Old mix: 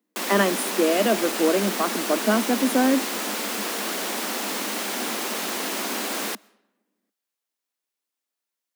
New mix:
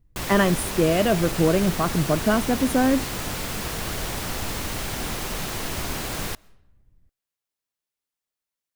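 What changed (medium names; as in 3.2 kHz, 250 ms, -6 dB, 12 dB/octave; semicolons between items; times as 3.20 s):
background -3.0 dB; master: remove steep high-pass 200 Hz 96 dB/octave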